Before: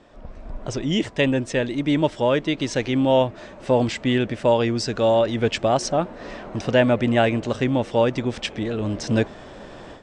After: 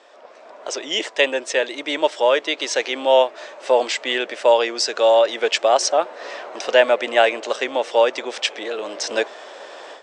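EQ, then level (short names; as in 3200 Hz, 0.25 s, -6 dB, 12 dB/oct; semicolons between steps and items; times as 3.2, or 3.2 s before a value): HPF 450 Hz 24 dB/oct; LPF 8100 Hz 12 dB/oct; high shelf 4100 Hz +6 dB; +4.5 dB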